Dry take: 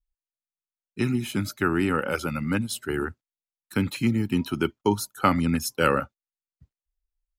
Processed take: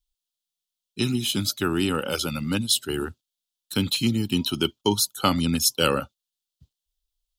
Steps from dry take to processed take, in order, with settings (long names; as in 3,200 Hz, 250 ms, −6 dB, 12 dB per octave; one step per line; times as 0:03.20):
high shelf with overshoot 2,600 Hz +8.5 dB, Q 3